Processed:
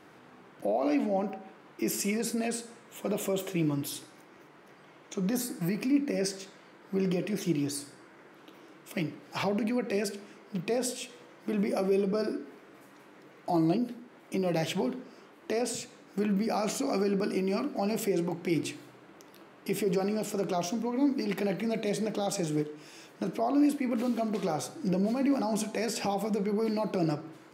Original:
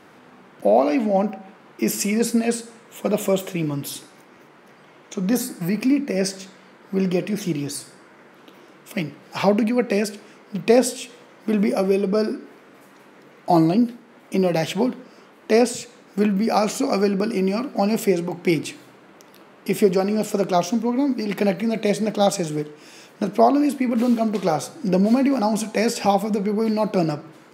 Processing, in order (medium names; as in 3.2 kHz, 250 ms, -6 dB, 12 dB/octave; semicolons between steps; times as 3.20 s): peak limiter -15 dBFS, peak gain reduction 10.5 dB; on a send: reverberation RT60 0.55 s, pre-delay 3 ms, DRR 14 dB; on the sum: trim -6 dB